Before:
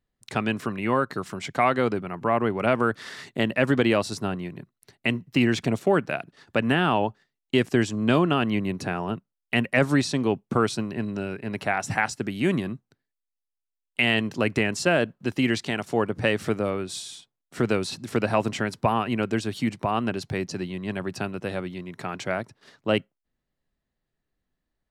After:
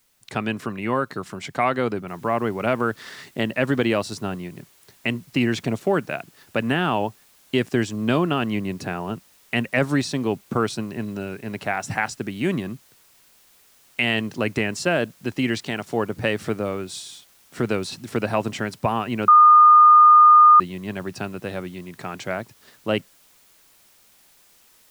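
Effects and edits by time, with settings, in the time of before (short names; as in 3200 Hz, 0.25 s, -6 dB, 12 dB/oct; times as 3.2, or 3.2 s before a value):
2.08 noise floor step -65 dB -56 dB
19.28–20.6 bleep 1220 Hz -7.5 dBFS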